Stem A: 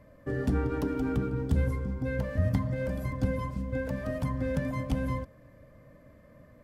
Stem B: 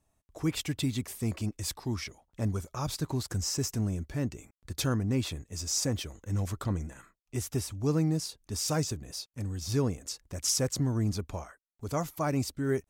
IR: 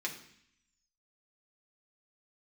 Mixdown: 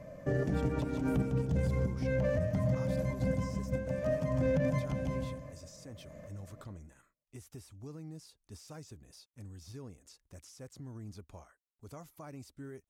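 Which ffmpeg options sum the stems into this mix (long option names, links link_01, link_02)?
-filter_complex "[0:a]equalizer=frequency=160:width_type=o:width=0.67:gain=11,equalizer=frequency=630:width_type=o:width=0.67:gain=11,equalizer=frequency=2500:width_type=o:width=0.67:gain=5,equalizer=frequency=6300:width_type=o:width=0.67:gain=12,volume=0.5dB,asplit=2[link_01][link_02];[link_02]volume=-15dB[link_03];[1:a]equalizer=frequency=10000:width=2.2:gain=3,alimiter=level_in=1dB:limit=-24dB:level=0:latency=1:release=206,volume=-1dB,volume=-13dB,asplit=2[link_04][link_05];[link_05]apad=whole_len=292774[link_06];[link_01][link_06]sidechaincompress=threshold=-55dB:ratio=6:attack=5.3:release=138[link_07];[link_03]aecho=0:1:153|306|459|612:1|0.27|0.0729|0.0197[link_08];[link_07][link_04][link_08]amix=inputs=3:normalize=0,acrossover=split=3700[link_09][link_10];[link_10]acompressor=threshold=-54dB:ratio=4:attack=1:release=60[link_11];[link_09][link_11]amix=inputs=2:normalize=0,alimiter=limit=-22.5dB:level=0:latency=1:release=23"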